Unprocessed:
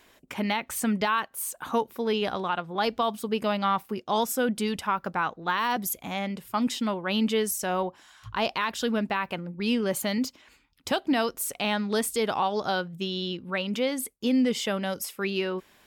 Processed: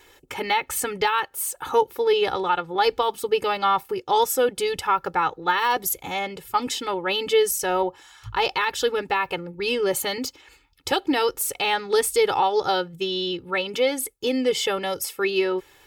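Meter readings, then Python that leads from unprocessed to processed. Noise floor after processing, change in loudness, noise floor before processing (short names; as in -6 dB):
-55 dBFS, +4.5 dB, -60 dBFS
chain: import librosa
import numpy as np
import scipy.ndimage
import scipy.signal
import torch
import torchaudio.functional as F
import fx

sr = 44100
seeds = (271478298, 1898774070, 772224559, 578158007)

y = x + 0.96 * np.pad(x, (int(2.3 * sr / 1000.0), 0))[:len(x)]
y = y * 10.0 ** (2.5 / 20.0)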